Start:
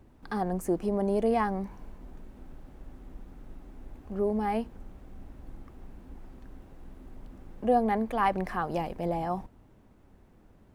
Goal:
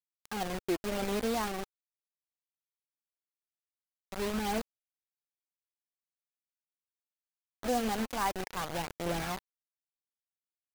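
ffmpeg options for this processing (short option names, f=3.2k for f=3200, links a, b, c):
-af "acrusher=bits=4:mix=0:aa=0.000001,aphaser=in_gain=1:out_gain=1:delay=4.2:decay=0.26:speed=0.44:type=triangular,volume=-6dB"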